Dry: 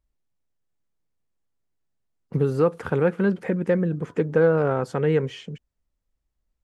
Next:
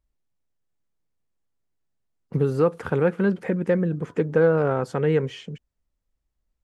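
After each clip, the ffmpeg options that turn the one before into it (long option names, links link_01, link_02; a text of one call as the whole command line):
ffmpeg -i in.wav -af anull out.wav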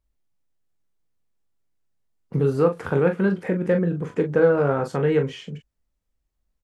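ffmpeg -i in.wav -af "aecho=1:1:22|41:0.355|0.398" out.wav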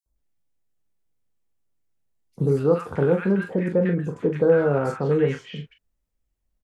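ffmpeg -i in.wav -filter_complex "[0:a]acrossover=split=1200|4300[link_01][link_02][link_03];[link_01]adelay=60[link_04];[link_02]adelay=160[link_05];[link_04][link_05][link_03]amix=inputs=3:normalize=0" out.wav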